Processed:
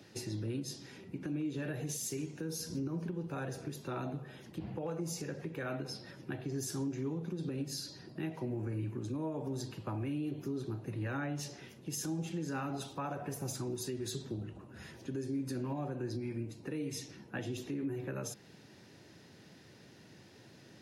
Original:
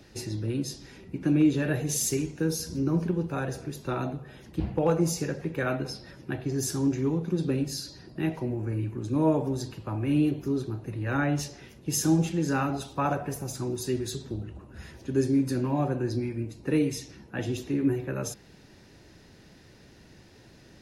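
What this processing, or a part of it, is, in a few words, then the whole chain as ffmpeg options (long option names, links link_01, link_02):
broadcast voice chain: -af "highpass=frequency=99:width=0.5412,highpass=frequency=99:width=1.3066,deesser=0.4,acompressor=threshold=-28dB:ratio=3,equalizer=frequency=3200:width_type=o:width=0.21:gain=2,alimiter=level_in=2dB:limit=-24dB:level=0:latency=1:release=179,volume=-2dB,volume=-3dB"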